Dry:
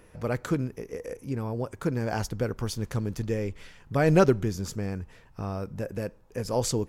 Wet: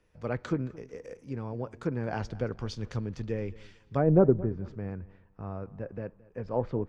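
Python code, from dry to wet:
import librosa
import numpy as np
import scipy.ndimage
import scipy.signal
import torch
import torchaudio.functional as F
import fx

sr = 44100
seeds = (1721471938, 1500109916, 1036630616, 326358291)

y = fx.env_lowpass_down(x, sr, base_hz=660.0, full_db=-18.5)
y = fx.lowpass(y, sr, hz=fx.steps((0.0, 6300.0), (4.18, 2000.0)), slope=12)
y = fx.echo_feedback(y, sr, ms=222, feedback_pct=35, wet_db=-19)
y = fx.band_widen(y, sr, depth_pct=40)
y = y * 10.0 ** (-3.5 / 20.0)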